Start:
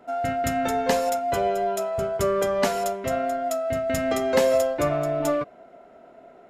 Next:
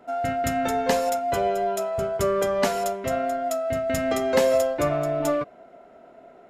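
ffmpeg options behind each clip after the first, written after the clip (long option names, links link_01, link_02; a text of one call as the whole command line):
ffmpeg -i in.wav -af anull out.wav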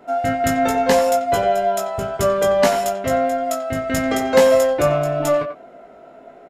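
ffmpeg -i in.wav -filter_complex "[0:a]asplit=2[link_01][link_02];[link_02]adelay=90,highpass=300,lowpass=3400,asoftclip=type=hard:threshold=-17dB,volume=-9dB[link_03];[link_01][link_03]amix=inputs=2:normalize=0,aresample=32000,aresample=44100,asplit=2[link_04][link_05];[link_05]adelay=19,volume=-4.5dB[link_06];[link_04][link_06]amix=inputs=2:normalize=0,volume=4.5dB" out.wav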